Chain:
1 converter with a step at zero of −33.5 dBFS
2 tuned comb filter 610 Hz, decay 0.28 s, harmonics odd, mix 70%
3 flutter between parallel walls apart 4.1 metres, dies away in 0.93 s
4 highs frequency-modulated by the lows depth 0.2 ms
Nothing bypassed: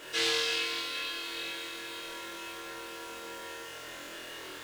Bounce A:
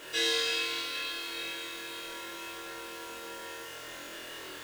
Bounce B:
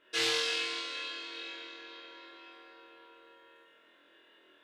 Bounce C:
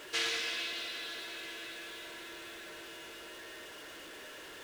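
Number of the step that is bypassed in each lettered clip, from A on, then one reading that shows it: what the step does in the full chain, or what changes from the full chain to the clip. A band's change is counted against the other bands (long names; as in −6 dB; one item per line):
4, 125 Hz band −1.5 dB
1, distortion level −8 dB
3, 2 kHz band +2.5 dB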